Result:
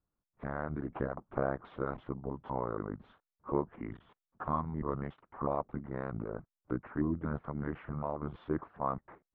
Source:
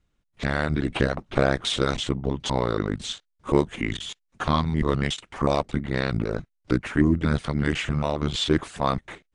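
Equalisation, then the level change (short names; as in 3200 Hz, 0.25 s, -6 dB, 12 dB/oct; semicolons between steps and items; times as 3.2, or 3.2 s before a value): ladder low-pass 1400 Hz, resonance 35%; low shelf 66 Hz -7.5 dB; -4.5 dB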